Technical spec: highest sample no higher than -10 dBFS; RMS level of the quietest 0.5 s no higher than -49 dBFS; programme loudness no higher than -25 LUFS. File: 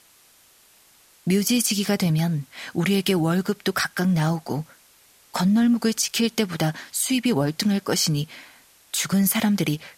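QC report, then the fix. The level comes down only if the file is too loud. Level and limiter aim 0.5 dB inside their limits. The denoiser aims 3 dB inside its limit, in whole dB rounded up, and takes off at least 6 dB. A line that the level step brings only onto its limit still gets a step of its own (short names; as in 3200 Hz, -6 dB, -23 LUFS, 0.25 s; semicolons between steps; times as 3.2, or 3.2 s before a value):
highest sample -8.5 dBFS: fail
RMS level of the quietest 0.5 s -56 dBFS: OK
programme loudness -22.5 LUFS: fail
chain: gain -3 dB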